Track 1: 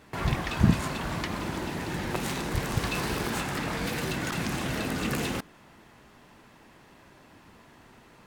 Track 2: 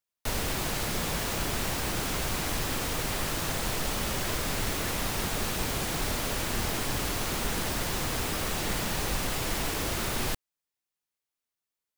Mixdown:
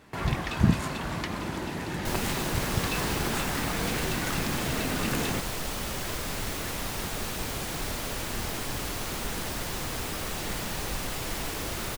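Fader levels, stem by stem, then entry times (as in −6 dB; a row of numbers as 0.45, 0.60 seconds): −0.5, −2.5 decibels; 0.00, 1.80 seconds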